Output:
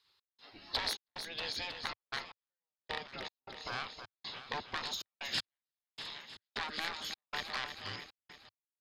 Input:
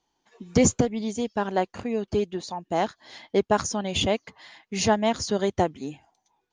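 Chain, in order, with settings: rattling part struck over -27 dBFS, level -17 dBFS; soft clip -21.5 dBFS, distortion -9 dB; bell 110 Hz -7.5 dB 1.4 oct; spectral gate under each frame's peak -15 dB weak; compressor 2:1, threshold -50 dBFS, peak gain reduction 10.5 dB; feedback echo 0.235 s, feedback 54%, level -8 dB; step gate "x.xxx.xxxx.x...x" 105 bpm -60 dB; speed mistake 45 rpm record played at 33 rpm; fifteen-band EQ 100 Hz +3 dB, 1000 Hz +4 dB, 4000 Hz +11 dB; gain +5 dB

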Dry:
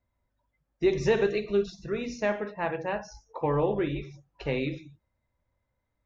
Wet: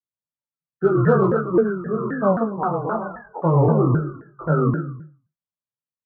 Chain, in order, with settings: nonlinear frequency compression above 1000 Hz 4:1; steep low-pass 1700 Hz 96 dB/oct; expander -55 dBFS; resonant low shelf 100 Hz -11.5 dB, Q 3; added harmonics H 6 -45 dB, 8 -44 dB, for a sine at -11.5 dBFS; feedback echo 0.112 s, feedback 23%, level -7 dB; chorus 0.83 Hz, delay 19 ms, depth 5.6 ms; shaped vibrato saw down 3.8 Hz, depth 250 cents; gain +9 dB

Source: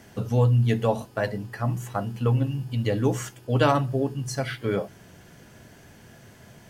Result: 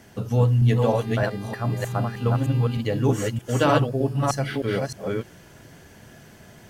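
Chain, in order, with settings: reverse delay 0.308 s, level -1.5 dB; 0.8–2.8 buzz 400 Hz, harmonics 12, -44 dBFS -5 dB/oct

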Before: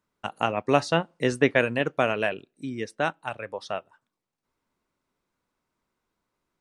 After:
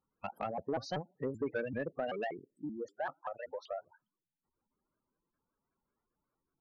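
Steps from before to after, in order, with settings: 2.69–3.72 tone controls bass -8 dB, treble -14 dB; spectral gate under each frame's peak -10 dB strong; compressor 2:1, threshold -30 dBFS, peak gain reduction 8 dB; soft clip -22 dBFS, distortion -16 dB; shaped vibrato saw up 5.2 Hz, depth 250 cents; gain -4.5 dB

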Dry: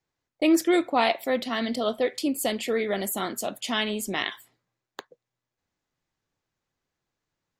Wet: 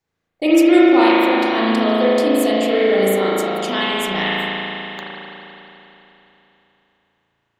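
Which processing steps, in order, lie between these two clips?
spring tank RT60 3.4 s, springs 36 ms, chirp 50 ms, DRR -8 dB; gain +1.5 dB

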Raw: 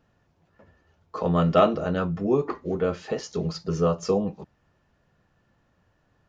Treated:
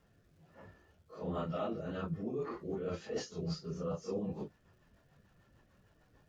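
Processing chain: phase scrambler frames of 0.1 s; reverse; compressor 6:1, threshold -36 dBFS, peak gain reduction 20 dB; reverse; rotary speaker horn 1.2 Hz, later 6.7 Hz, at 1.63; crackle 560/s -71 dBFS; gain +1.5 dB

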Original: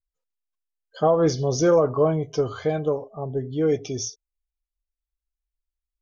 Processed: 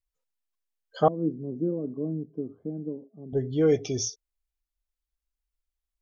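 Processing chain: 1.08–3.33 Butterworth band-pass 240 Hz, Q 1.8

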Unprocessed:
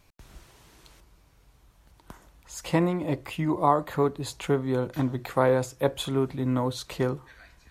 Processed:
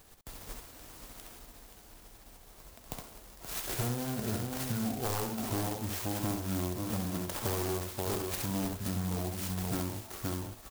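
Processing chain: spectral whitening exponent 0.6; echo 0.379 s -9 dB; wavefolder -17.5 dBFS; doubler 48 ms -5 dB; varispeed -28%; compressor 6:1, threshold -34 dBFS, peak gain reduction 14.5 dB; clock jitter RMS 0.13 ms; gain +2.5 dB

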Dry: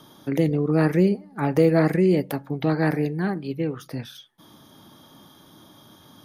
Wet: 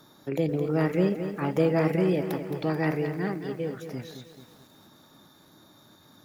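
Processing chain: formant shift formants +2 st; lo-fi delay 0.218 s, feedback 55%, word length 8-bit, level -9 dB; gain -5.5 dB

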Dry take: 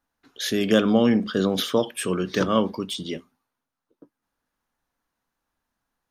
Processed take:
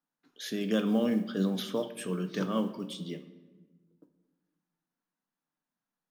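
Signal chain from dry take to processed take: flange 0.54 Hz, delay 6.4 ms, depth 8.1 ms, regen +77%; modulation noise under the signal 31 dB; resonant low shelf 120 Hz -12 dB, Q 3; shoebox room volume 990 m³, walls mixed, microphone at 0.46 m; gain -7.5 dB

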